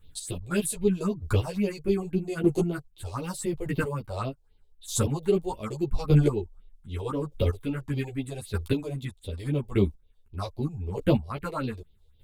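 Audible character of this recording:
phaser sweep stages 4, 3.8 Hz, lowest notch 200–1,600 Hz
chopped level 0.82 Hz, depth 65%, duty 15%
a shimmering, thickened sound

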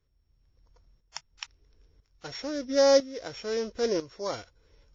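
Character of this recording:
a buzz of ramps at a fixed pitch in blocks of 8 samples
tremolo saw up 1 Hz, depth 75%
WMA

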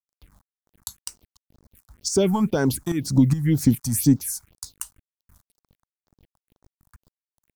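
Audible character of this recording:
tremolo saw up 2.4 Hz, depth 70%
a quantiser's noise floor 10 bits, dither none
phaser sweep stages 4, 2 Hz, lowest notch 390–3,000 Hz

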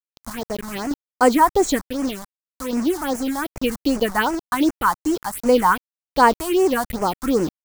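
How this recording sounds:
sample-and-hold tremolo 1.1 Hz, depth 70%
a quantiser's noise floor 6 bits, dither none
phaser sweep stages 4, 2.6 Hz, lowest notch 420–3,700 Hz

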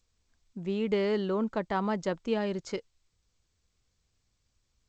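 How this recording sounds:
G.722

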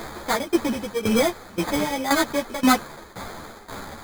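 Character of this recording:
a quantiser's noise floor 6 bits, dither triangular
tremolo saw down 1.9 Hz, depth 85%
aliases and images of a low sample rate 2,800 Hz, jitter 0%
a shimmering, thickened sound

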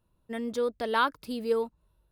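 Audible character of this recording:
background noise floor −74 dBFS
spectral slope −1.5 dB per octave

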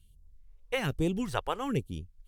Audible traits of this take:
phaser sweep stages 2, 1.2 Hz, lowest notch 160–1,700 Hz
Ogg Vorbis

